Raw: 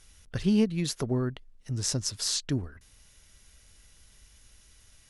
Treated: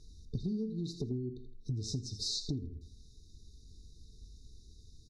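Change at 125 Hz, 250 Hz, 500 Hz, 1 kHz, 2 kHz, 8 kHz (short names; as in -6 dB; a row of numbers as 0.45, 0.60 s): -6.0 dB, -10.0 dB, -10.5 dB, under -25 dB, under -40 dB, -13.0 dB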